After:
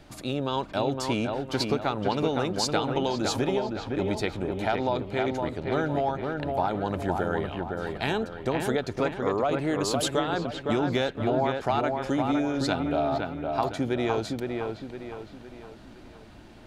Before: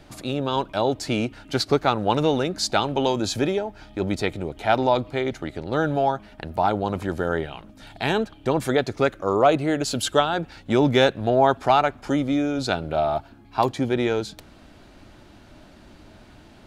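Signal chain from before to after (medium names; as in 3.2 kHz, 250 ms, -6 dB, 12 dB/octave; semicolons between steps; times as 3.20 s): compression, threshold -20 dBFS, peak gain reduction 8.5 dB; on a send: feedback echo behind a low-pass 512 ms, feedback 43%, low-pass 2.7 kHz, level -4 dB; on the sum: trim -2.5 dB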